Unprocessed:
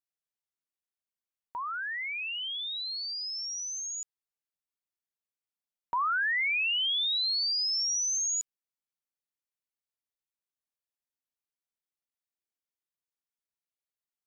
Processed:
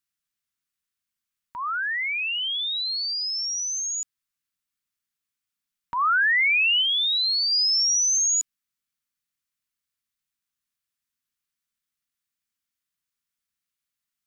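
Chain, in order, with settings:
0:06.81–0:07.51: ceiling on every frequency bin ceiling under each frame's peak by 27 dB
flat-topped bell 550 Hz −12.5 dB
level +8 dB

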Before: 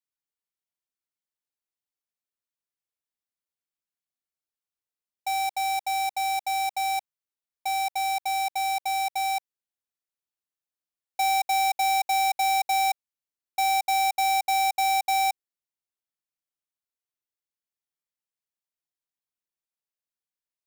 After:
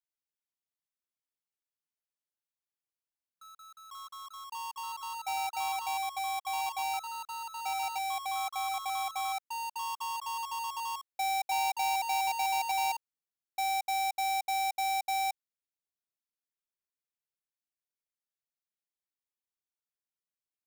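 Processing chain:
delay with pitch and tempo change per echo 94 ms, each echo +3 semitones, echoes 3, each echo −6 dB
level −7.5 dB

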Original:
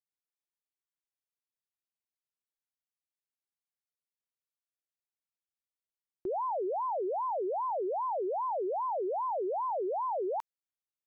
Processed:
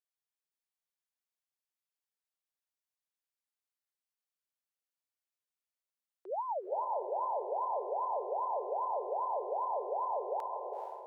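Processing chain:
Butterworth high-pass 470 Hz 36 dB per octave
0:06.30–0:06.95: comb filter 3.4 ms, depth 37%
feedback delay with all-pass diffusion 453 ms, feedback 41%, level −3.5 dB
level −3 dB

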